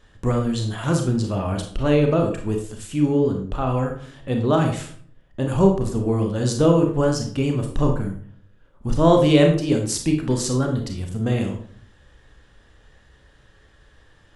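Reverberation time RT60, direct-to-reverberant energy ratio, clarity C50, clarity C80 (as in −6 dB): 0.55 s, 2.5 dB, 6.5 dB, 11.0 dB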